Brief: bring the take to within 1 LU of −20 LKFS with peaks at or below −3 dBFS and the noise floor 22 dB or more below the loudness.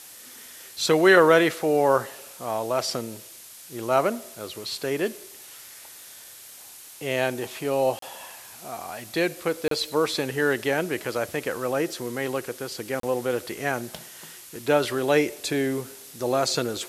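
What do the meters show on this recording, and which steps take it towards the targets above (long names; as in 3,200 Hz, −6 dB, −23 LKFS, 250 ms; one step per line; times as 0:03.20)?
number of dropouts 3; longest dropout 33 ms; background noise floor −45 dBFS; target noise floor −47 dBFS; integrated loudness −25.0 LKFS; sample peak −3.5 dBFS; target loudness −20.0 LKFS
→ repair the gap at 0:07.99/0:09.68/0:13.00, 33 ms
broadband denoise 6 dB, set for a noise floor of −45 dBFS
level +5 dB
brickwall limiter −3 dBFS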